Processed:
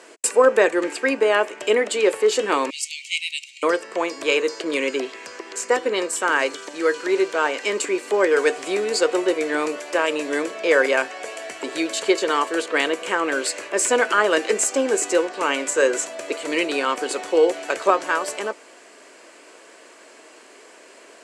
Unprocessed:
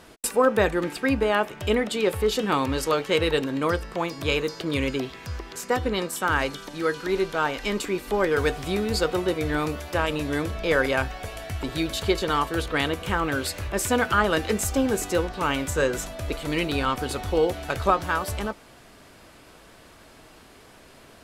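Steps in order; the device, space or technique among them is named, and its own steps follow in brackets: 2.70–3.63 s: steep high-pass 2.2 kHz 96 dB/octave; phone speaker on a table (cabinet simulation 340–8900 Hz, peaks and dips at 800 Hz -6 dB, 1.3 kHz -5 dB, 3.6 kHz -8 dB, 5.2 kHz -3 dB, 7.6 kHz +5 dB); trim +6.5 dB

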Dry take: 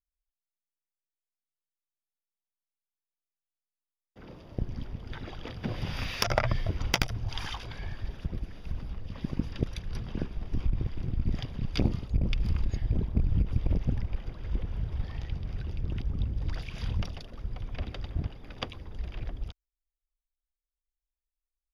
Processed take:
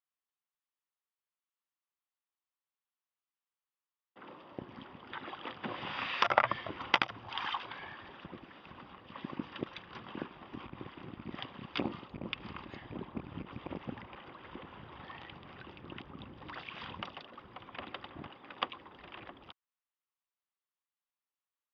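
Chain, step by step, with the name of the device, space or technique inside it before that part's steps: phone earpiece (cabinet simulation 450–3100 Hz, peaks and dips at 450 Hz -8 dB, 650 Hz -7 dB, 1.1 kHz +4 dB, 1.6 kHz -3 dB, 2.3 kHz -5 dB); trim +5 dB

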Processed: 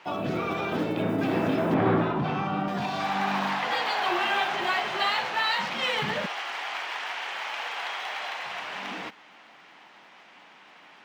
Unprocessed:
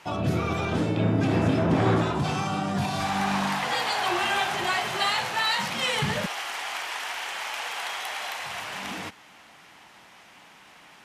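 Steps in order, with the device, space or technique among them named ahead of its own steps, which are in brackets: early digital voice recorder (band-pass 220–4000 Hz; block-companded coder 7-bit); 1.74–2.68 s: tone controls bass +6 dB, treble -14 dB

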